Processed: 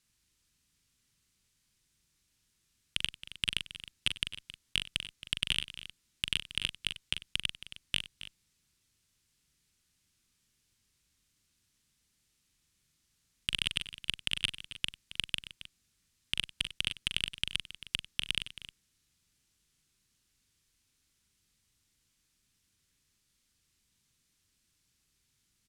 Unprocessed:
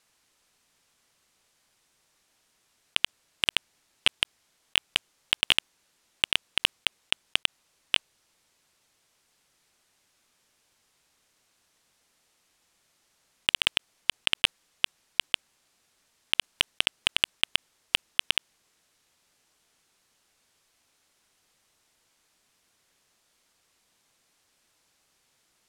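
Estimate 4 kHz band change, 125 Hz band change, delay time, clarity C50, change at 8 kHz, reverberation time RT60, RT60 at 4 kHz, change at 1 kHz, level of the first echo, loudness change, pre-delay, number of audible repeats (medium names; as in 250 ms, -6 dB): -7.0 dB, +3.0 dB, 41 ms, no reverb, -5.0 dB, no reverb, no reverb, -14.5 dB, -8.0 dB, -7.5 dB, no reverb, 4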